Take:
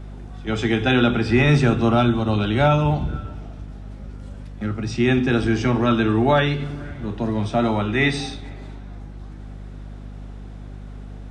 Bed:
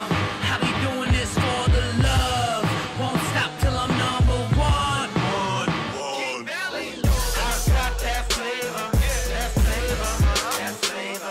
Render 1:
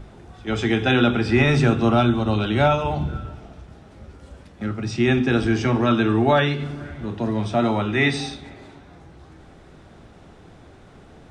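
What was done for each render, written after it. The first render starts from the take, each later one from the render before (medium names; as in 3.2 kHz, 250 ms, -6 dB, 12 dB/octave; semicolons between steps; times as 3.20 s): hum notches 50/100/150/200/250/300 Hz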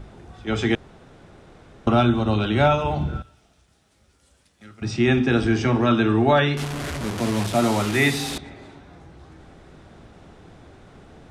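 0.75–1.87 s: room tone; 3.22–4.82 s: pre-emphasis filter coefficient 0.9; 6.57–8.38 s: one-bit delta coder 64 kbps, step -23 dBFS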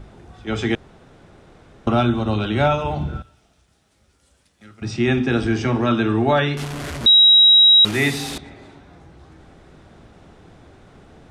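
7.06–7.85 s: bleep 3.84 kHz -7.5 dBFS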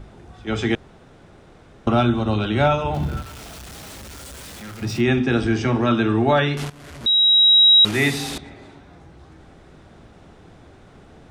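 2.94–5.01 s: jump at every zero crossing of -32.5 dBFS; 6.70–8.16 s: fade in equal-power, from -18 dB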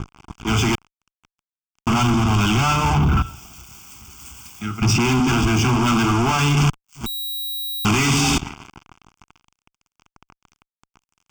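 fuzz box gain 33 dB, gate -38 dBFS; static phaser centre 2.7 kHz, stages 8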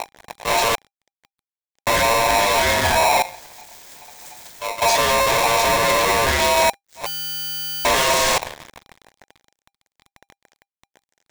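polarity switched at an audio rate 800 Hz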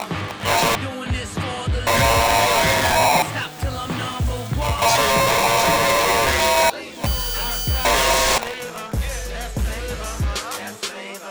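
add bed -3.5 dB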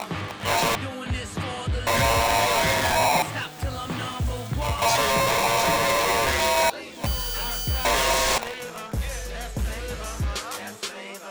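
trim -4.5 dB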